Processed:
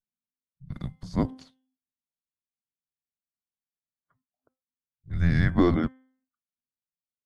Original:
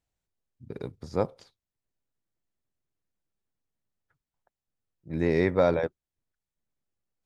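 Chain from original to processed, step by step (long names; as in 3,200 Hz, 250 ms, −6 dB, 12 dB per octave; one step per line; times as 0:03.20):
frequency shifter −260 Hz
hum removal 259.8 Hz, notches 13
noise reduction from a noise print of the clip's start 20 dB
level +2 dB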